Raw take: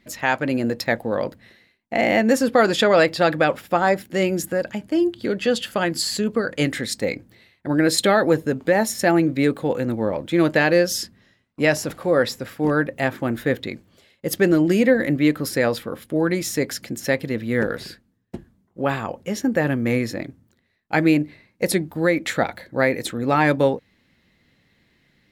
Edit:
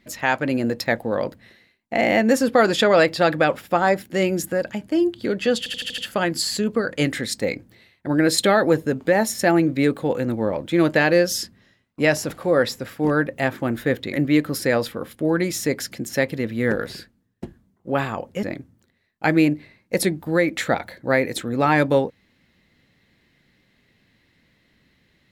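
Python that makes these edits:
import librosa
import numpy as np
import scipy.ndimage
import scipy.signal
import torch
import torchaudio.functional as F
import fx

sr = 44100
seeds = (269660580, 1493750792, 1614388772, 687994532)

y = fx.edit(x, sr, fx.stutter(start_s=5.58, slice_s=0.08, count=6),
    fx.cut(start_s=13.73, length_s=1.31),
    fx.cut(start_s=19.34, length_s=0.78), tone=tone)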